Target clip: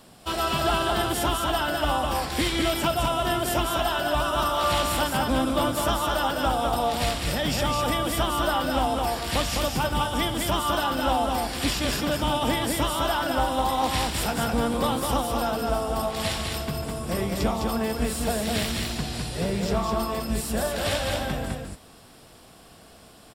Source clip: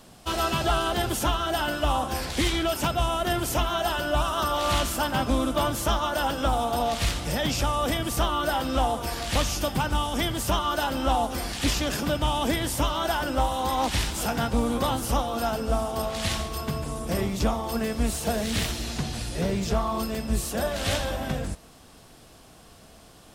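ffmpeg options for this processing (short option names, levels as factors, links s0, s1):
-filter_complex "[0:a]lowshelf=f=70:g=-6.5,bandreject=f=6300:w=7.2,asplit=2[s0][s1];[s1]aecho=0:1:206:0.668[s2];[s0][s2]amix=inputs=2:normalize=0"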